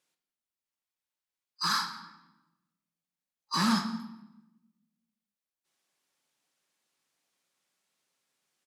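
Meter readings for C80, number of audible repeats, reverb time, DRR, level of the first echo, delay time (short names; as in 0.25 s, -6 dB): 11.0 dB, 1, 0.90 s, 5.0 dB, -21.0 dB, 0.17 s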